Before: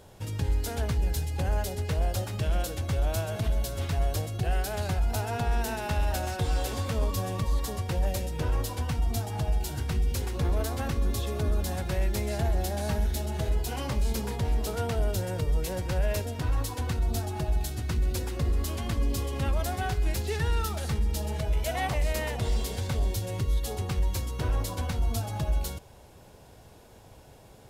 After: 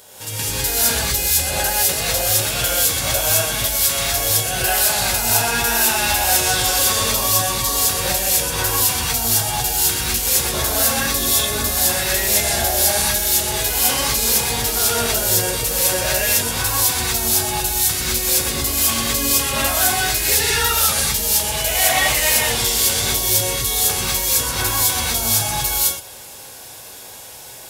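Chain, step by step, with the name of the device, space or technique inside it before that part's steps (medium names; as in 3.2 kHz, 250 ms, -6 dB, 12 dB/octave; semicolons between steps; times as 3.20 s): tilt EQ +4 dB/octave; parallel distortion (in parallel at -5.5 dB: hard clipper -27.5 dBFS, distortion -7 dB); on the sum: gated-style reverb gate 230 ms rising, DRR -8 dB; trim +1.5 dB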